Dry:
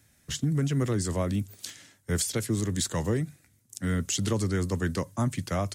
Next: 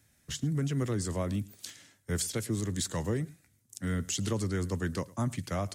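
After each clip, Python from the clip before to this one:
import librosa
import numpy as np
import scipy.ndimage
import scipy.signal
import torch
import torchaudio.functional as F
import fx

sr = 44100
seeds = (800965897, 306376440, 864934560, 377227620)

y = x + 10.0 ** (-22.5 / 20.0) * np.pad(x, (int(108 * sr / 1000.0), 0))[:len(x)]
y = y * 10.0 ** (-4.0 / 20.0)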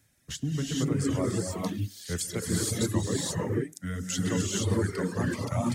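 y = fx.rev_gated(x, sr, seeds[0], gate_ms=500, shape='rising', drr_db=-5.0)
y = fx.dereverb_blind(y, sr, rt60_s=1.4)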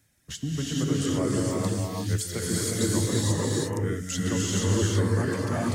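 y = fx.rev_gated(x, sr, seeds[1], gate_ms=380, shape='rising', drr_db=0.0)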